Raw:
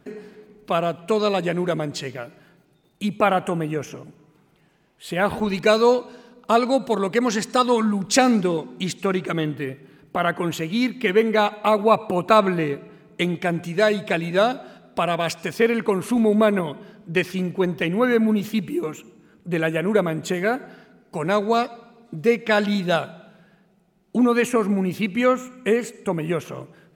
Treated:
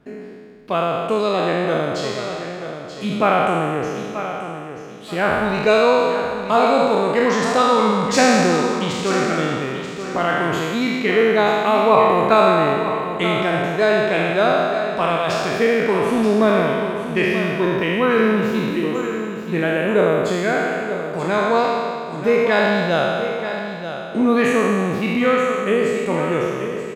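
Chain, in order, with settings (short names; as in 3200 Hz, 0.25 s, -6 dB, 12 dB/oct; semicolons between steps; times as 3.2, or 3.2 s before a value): spectral trails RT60 2.05 s; high shelf 6200 Hz -11 dB; on a send: feedback echo 0.933 s, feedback 30%, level -10 dB; on the sum: gain -1 dB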